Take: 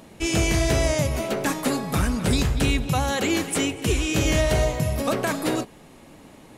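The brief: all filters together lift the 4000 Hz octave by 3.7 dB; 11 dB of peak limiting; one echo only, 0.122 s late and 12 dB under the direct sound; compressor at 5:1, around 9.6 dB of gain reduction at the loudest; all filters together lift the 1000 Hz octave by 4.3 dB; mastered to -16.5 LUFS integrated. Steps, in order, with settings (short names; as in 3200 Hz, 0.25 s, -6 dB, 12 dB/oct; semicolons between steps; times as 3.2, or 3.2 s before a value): bell 1000 Hz +5.5 dB; bell 4000 Hz +4.5 dB; compressor 5:1, threshold -27 dBFS; limiter -26.5 dBFS; echo 0.122 s -12 dB; gain +18.5 dB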